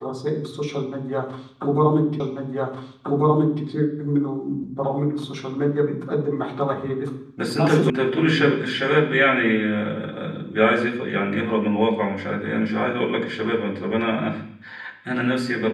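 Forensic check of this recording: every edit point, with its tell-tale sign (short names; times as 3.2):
2.2 repeat of the last 1.44 s
7.9 sound cut off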